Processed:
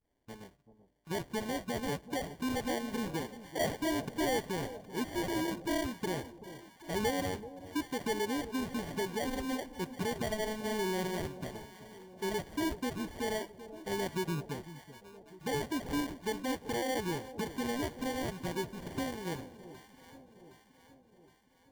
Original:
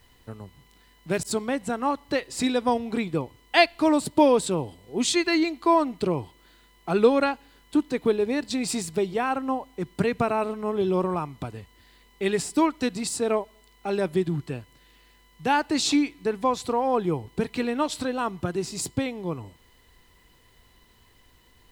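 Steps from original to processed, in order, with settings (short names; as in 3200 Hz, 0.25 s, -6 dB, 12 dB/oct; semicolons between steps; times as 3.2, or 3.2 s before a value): spectral delay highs late, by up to 0.206 s; LPF 3400 Hz 6 dB/oct; low shelf 100 Hz -7.5 dB; hard clip -16.5 dBFS, distortion -16 dB; limiter -21.5 dBFS, peak gain reduction 5 dB; sample-and-hold 34×; gate -52 dBFS, range -13 dB; echo with dull and thin repeats by turns 0.383 s, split 810 Hz, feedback 71%, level -13 dB; gain -5.5 dB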